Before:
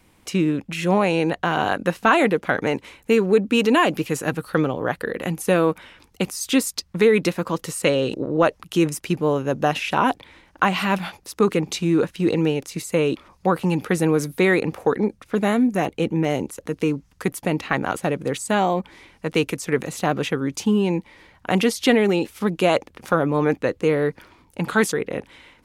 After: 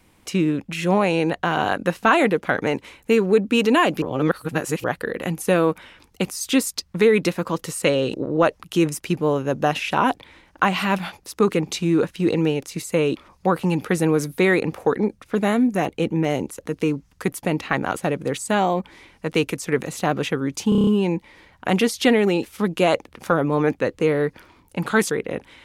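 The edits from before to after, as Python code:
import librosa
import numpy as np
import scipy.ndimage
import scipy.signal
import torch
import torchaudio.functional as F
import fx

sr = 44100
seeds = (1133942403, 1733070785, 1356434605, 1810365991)

y = fx.edit(x, sr, fx.reverse_span(start_s=4.02, length_s=0.82),
    fx.stutter(start_s=20.69, slice_s=0.03, count=7), tone=tone)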